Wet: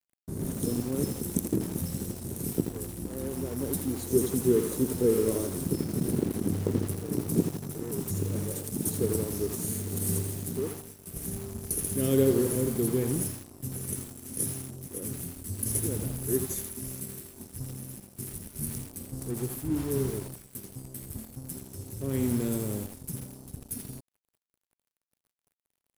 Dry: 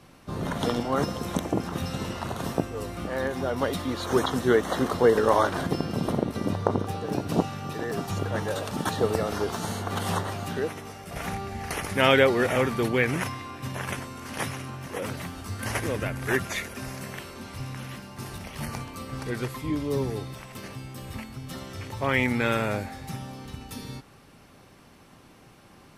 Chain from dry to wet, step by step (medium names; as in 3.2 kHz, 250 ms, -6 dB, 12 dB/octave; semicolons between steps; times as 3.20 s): FFT filter 400 Hz 0 dB, 830 Hz -28 dB, 2.5 kHz -26 dB, 9.9 kHz +12 dB; crossover distortion -45 dBFS; bit-crushed delay 82 ms, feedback 55%, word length 6-bit, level -7.5 dB